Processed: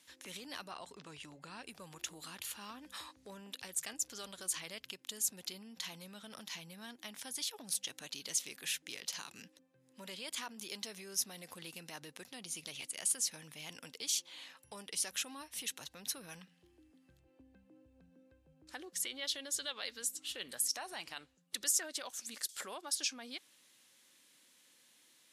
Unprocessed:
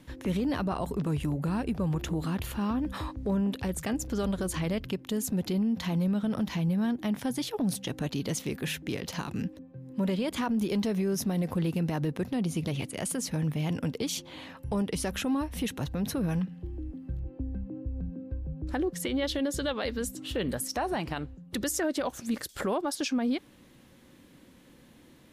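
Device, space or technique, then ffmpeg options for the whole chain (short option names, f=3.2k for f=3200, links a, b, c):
piezo pickup straight into a mixer: -filter_complex "[0:a]asettb=1/sr,asplit=3[a][b][c];[a]atrim=end=0.714[d];[b]atrim=start=0.71:end=1.64,asetpts=PTS-STARTPTS,afade=t=in:d=0.004:c=qsin,afade=t=out:st=0.926:d=0.004:c=qsin,lowpass=5.6k[e];[c]atrim=start=1.636[f];[d][e]acrossfade=d=0.004:c1=hsin:c2=qsin[g];[g][f]acrossfade=d=0.004:c1=qsin:c2=hsin,lowpass=8.9k,aderivative,volume=4dB"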